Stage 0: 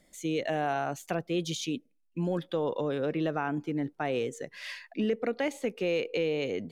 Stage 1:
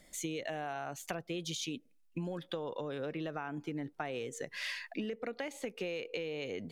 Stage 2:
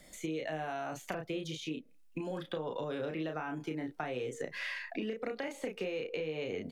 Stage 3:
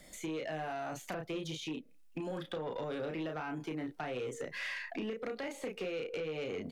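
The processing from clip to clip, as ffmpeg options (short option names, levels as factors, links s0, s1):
-af "equalizer=f=280:w=0.43:g=-4.5,acompressor=threshold=0.01:ratio=12,volume=1.78"
-filter_complex "[0:a]asplit=2[s0][s1];[s1]adelay=32,volume=0.596[s2];[s0][s2]amix=inputs=2:normalize=0,acrossover=split=290|2500[s3][s4][s5];[s3]acompressor=threshold=0.00447:ratio=4[s6];[s4]acompressor=threshold=0.0112:ratio=4[s7];[s5]acompressor=threshold=0.00158:ratio=4[s8];[s6][s7][s8]amix=inputs=3:normalize=0,volume=1.5"
-af "asoftclip=type=tanh:threshold=0.0237,volume=1.12"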